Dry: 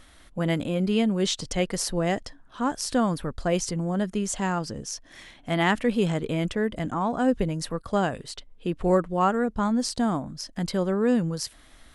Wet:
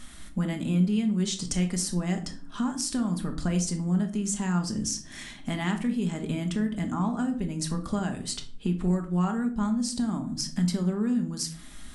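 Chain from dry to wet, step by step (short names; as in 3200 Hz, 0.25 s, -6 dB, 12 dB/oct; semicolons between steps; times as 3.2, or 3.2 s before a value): graphic EQ 250/500/8000 Hz +8/-8/+8 dB; compressor 6:1, threshold -31 dBFS, peak gain reduction 16 dB; shoebox room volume 460 m³, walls furnished, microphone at 1.3 m; gain +2.5 dB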